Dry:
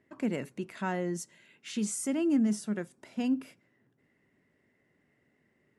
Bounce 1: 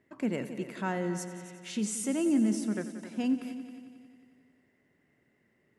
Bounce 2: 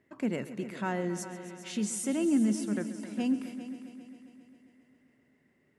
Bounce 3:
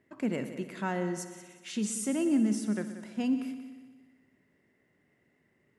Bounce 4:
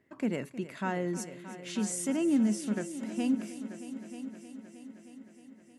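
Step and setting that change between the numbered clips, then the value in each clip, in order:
multi-head delay, time: 90 ms, 134 ms, 61 ms, 312 ms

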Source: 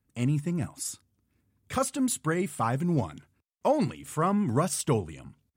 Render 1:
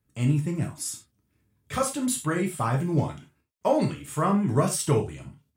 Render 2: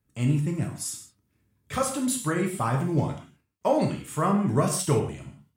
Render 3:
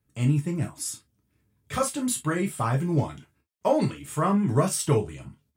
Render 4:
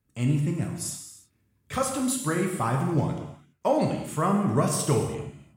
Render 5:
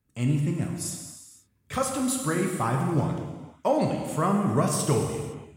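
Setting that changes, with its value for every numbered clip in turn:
gated-style reverb, gate: 120 ms, 200 ms, 80 ms, 360 ms, 540 ms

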